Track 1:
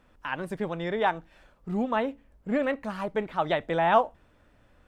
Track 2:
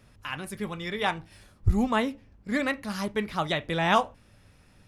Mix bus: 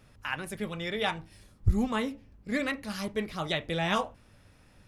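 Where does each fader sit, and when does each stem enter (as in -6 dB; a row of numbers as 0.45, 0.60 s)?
-6.0, -1.5 dB; 0.00, 0.00 s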